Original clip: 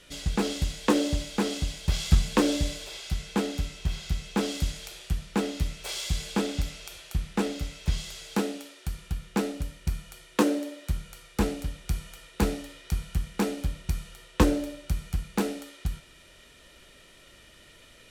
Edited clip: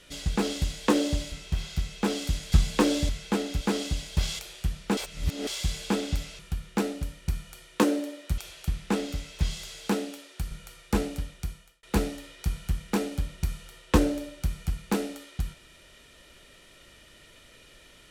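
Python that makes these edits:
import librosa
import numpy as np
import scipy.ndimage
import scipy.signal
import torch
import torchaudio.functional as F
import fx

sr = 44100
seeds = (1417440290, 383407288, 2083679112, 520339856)

y = fx.edit(x, sr, fx.swap(start_s=1.32, length_s=0.78, other_s=3.65, other_length_s=1.2),
    fx.cut(start_s=2.67, length_s=0.46),
    fx.reverse_span(start_s=5.43, length_s=0.5),
    fx.move(start_s=8.98, length_s=1.99, to_s=6.85),
    fx.fade_out_span(start_s=11.65, length_s=0.64), tone=tone)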